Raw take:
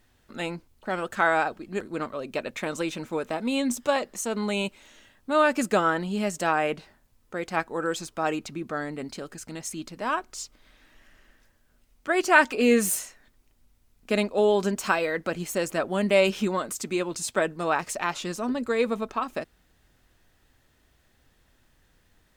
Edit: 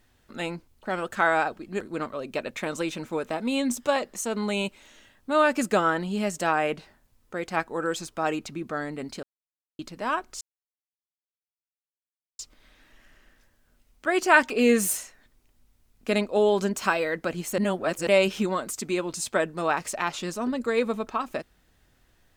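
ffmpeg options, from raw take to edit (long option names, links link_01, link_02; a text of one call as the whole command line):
ffmpeg -i in.wav -filter_complex "[0:a]asplit=6[link_01][link_02][link_03][link_04][link_05][link_06];[link_01]atrim=end=9.23,asetpts=PTS-STARTPTS,afade=type=out:start_time=9.226:duration=0.004:curve=hsin[link_07];[link_02]atrim=start=9.23:end=9.79,asetpts=PTS-STARTPTS,volume=0[link_08];[link_03]atrim=start=9.79:end=10.41,asetpts=PTS-STARTPTS,afade=type=in:duration=0.004:curve=hsin,afade=type=out:start_time=0.616:duration=0.004:curve=hsin,apad=pad_dur=1.98[link_09];[link_04]atrim=start=10.41:end=15.602,asetpts=PTS-STARTPTS,afade=type=in:duration=0.004:curve=hsin[link_10];[link_05]atrim=start=15.598:end=16.092,asetpts=PTS-STARTPTS,areverse[link_11];[link_06]atrim=start=16.088[link_12];[link_07][link_08][link_09][link_10]concat=n=4:v=0:a=1[link_13];[link_13][link_11]acrossfade=duration=0.004:curve1=hsin:curve2=hsin[link_14];[link_14][link_12]acrossfade=duration=0.004:curve1=hsin:curve2=hsin" out.wav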